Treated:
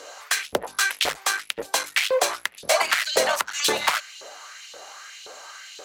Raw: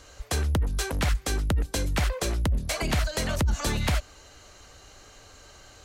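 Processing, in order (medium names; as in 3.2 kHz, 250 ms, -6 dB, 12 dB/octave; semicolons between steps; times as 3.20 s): one-sided clip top -24.5 dBFS, bottom -21.5 dBFS; LFO high-pass saw up 1.9 Hz 440–3400 Hz; trim +8.5 dB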